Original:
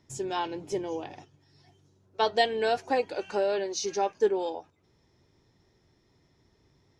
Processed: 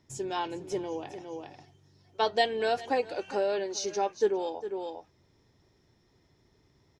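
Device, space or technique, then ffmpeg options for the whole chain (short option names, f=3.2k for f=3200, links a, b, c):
ducked delay: -filter_complex "[0:a]asplit=3[a][b][c];[b]adelay=405,volume=-4dB[d];[c]apad=whole_len=326304[e];[d][e]sidechaincompress=threshold=-54dB:ratio=3:attack=46:release=124[f];[a][f]amix=inputs=2:normalize=0,volume=-1.5dB"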